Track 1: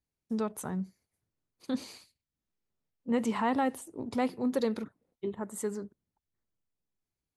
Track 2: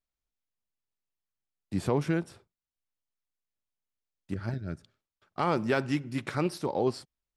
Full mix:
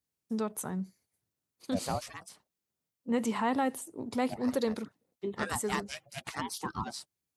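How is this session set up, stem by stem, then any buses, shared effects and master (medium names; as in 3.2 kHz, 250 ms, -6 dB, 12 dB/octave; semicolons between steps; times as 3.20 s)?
-1.0 dB, 0.00 s, no send, none
-1.5 dB, 0.00 s, no send, harmonic-percussive separation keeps percussive; tone controls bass -1 dB, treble +5 dB; ring modulator with a swept carrier 470 Hz, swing 35%, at 0.76 Hz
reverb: none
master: high-pass 84 Hz; treble shelf 4.7 kHz +6 dB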